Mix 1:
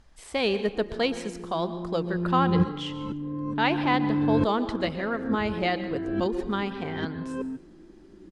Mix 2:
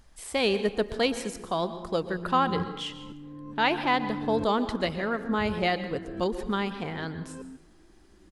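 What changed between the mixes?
second sound -10.5 dB; master: remove distance through air 54 m

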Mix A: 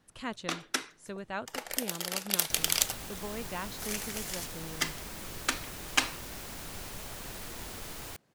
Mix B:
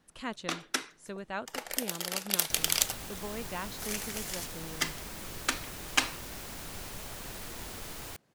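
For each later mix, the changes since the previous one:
speech: add peaking EQ 110 Hz -13 dB 0.31 oct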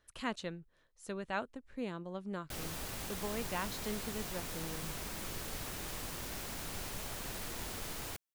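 first sound: muted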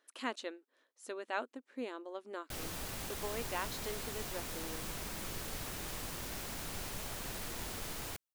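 speech: add brick-wall FIR high-pass 230 Hz

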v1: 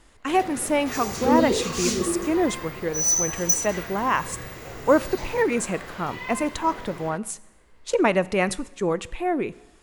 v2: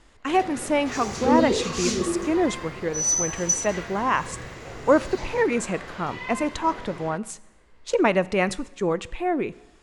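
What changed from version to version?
master: add low-pass 7.5 kHz 12 dB/octave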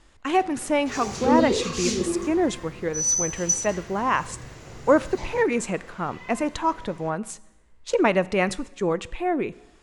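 first sound -9.0 dB

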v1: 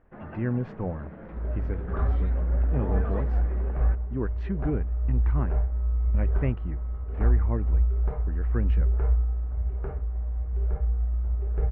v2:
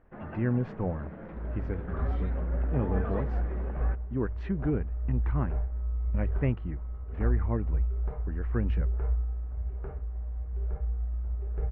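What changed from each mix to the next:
second sound -5.5 dB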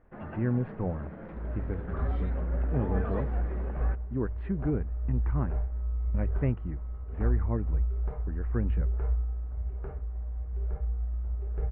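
speech: add distance through air 420 m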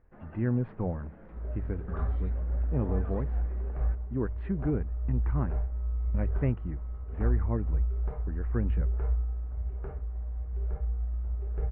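first sound -9.0 dB

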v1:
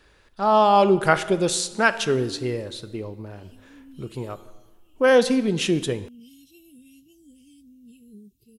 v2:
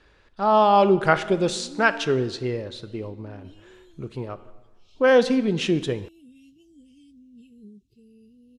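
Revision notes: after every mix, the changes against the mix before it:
background: entry -0.50 s; master: add distance through air 86 m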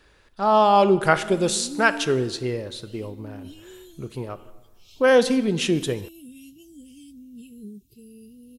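background +6.5 dB; master: remove distance through air 86 m

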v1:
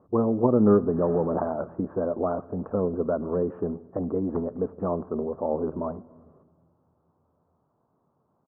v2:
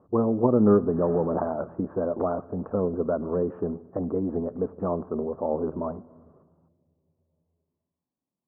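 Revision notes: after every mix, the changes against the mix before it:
second sound: entry -2.15 s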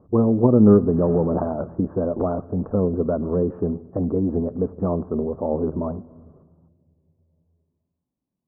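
master: add tilt EQ -3 dB/octave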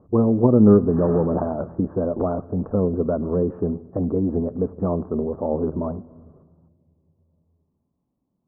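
first sound +9.0 dB

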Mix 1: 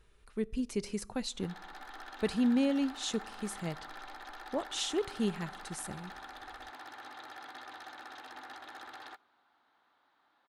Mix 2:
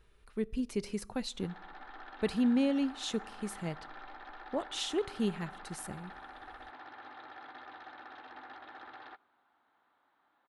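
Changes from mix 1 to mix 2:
background: add distance through air 230 m; master: add peaking EQ 7.1 kHz -4.5 dB 0.96 oct

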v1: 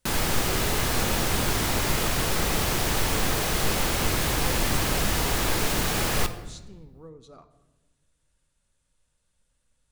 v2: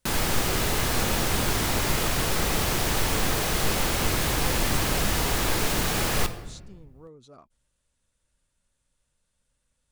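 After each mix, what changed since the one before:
speech: send off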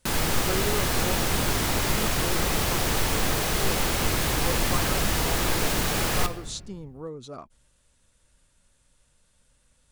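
speech +10.5 dB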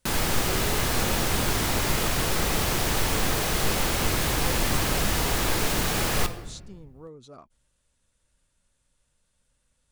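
speech -7.0 dB

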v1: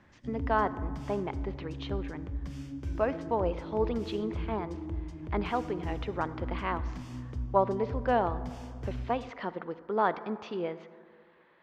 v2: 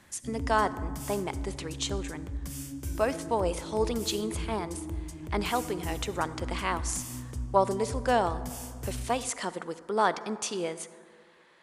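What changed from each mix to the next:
speech: remove distance through air 220 m; master: remove distance through air 220 m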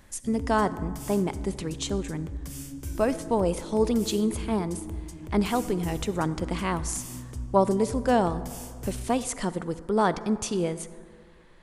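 speech: remove frequency weighting A

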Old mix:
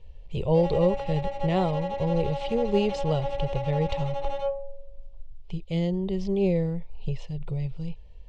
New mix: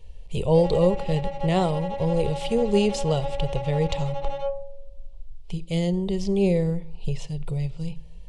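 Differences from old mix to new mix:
speech: remove distance through air 140 m; reverb: on, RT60 0.70 s

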